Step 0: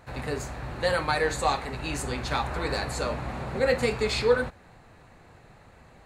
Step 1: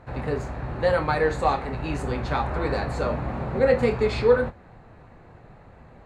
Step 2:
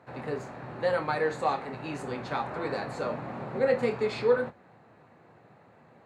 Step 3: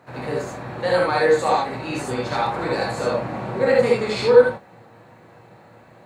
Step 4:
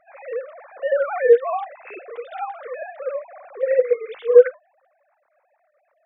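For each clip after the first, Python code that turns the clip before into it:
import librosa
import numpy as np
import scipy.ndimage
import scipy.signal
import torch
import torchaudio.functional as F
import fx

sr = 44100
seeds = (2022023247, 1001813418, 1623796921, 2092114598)

y1 = fx.lowpass(x, sr, hz=1100.0, slope=6)
y1 = fx.doubler(y1, sr, ms=26.0, db=-12)
y1 = F.gain(torch.from_numpy(y1), 5.0).numpy()
y2 = scipy.signal.sosfilt(scipy.signal.bessel(8, 170.0, 'highpass', norm='mag', fs=sr, output='sos'), y1)
y2 = F.gain(torch.from_numpy(y2), -5.0).numpy()
y3 = fx.high_shelf(y2, sr, hz=5100.0, db=9.0)
y3 = fx.rev_gated(y3, sr, seeds[0], gate_ms=100, shape='rising', drr_db=-2.5)
y3 = F.gain(torch.from_numpy(y3), 4.0).numpy()
y4 = fx.sine_speech(y3, sr)
y4 = fx.rider(y4, sr, range_db=5, speed_s=2.0)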